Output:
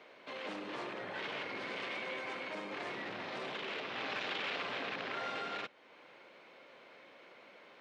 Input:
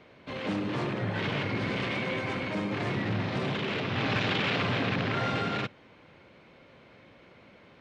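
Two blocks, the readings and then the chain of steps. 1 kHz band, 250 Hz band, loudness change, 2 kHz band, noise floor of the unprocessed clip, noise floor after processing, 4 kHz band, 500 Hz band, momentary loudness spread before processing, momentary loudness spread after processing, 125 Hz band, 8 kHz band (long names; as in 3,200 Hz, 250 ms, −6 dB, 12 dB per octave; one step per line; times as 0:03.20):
−7.5 dB, −16.5 dB, −9.5 dB, −7.5 dB, −56 dBFS, −59 dBFS, −7.5 dB, −9.5 dB, 5 LU, 20 LU, −27.0 dB, can't be measured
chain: high-pass filter 430 Hz 12 dB per octave
downward compressor 1.5 to 1, threshold −51 dBFS, peak gain reduction 9 dB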